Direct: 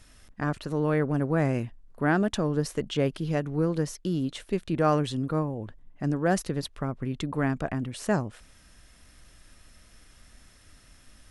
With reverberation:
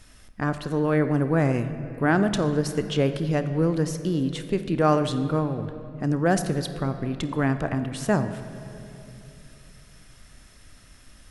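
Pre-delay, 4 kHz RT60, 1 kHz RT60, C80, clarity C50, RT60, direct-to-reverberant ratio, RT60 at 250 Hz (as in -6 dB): 30 ms, 1.9 s, 2.5 s, 11.0 dB, 10.5 dB, 2.8 s, 9.5 dB, 3.3 s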